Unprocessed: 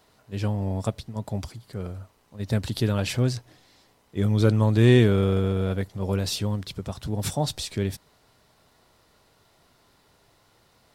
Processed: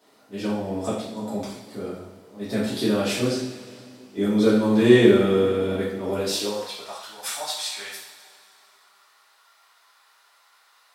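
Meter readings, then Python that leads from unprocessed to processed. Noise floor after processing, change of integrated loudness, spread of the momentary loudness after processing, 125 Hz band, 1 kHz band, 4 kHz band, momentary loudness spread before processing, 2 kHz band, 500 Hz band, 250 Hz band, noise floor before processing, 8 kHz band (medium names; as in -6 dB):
-59 dBFS, +2.0 dB, 19 LU, -9.0 dB, +3.0 dB, +3.5 dB, 18 LU, +4.0 dB, +5.5 dB, +4.0 dB, -63 dBFS, +3.5 dB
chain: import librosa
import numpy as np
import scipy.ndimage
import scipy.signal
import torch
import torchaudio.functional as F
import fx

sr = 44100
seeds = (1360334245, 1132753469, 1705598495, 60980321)

y = fx.rev_double_slope(x, sr, seeds[0], early_s=0.62, late_s=2.7, knee_db=-16, drr_db=-9.5)
y = fx.filter_sweep_highpass(y, sr, from_hz=270.0, to_hz=1200.0, start_s=6.25, end_s=7.13, q=1.7)
y = y * librosa.db_to_amplitude(-6.5)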